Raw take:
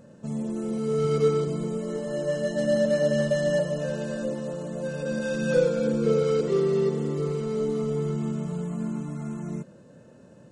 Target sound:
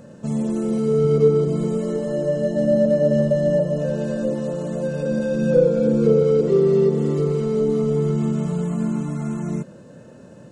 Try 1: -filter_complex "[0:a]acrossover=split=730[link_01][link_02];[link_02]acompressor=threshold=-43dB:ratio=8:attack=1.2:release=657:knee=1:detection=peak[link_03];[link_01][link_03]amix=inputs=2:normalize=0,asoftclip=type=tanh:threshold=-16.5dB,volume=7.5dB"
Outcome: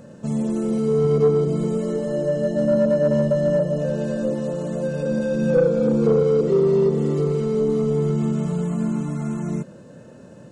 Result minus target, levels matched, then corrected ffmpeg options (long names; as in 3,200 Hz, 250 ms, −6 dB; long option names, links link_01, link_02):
soft clipping: distortion +18 dB
-filter_complex "[0:a]acrossover=split=730[link_01][link_02];[link_02]acompressor=threshold=-43dB:ratio=8:attack=1.2:release=657:knee=1:detection=peak[link_03];[link_01][link_03]amix=inputs=2:normalize=0,asoftclip=type=tanh:threshold=-6dB,volume=7.5dB"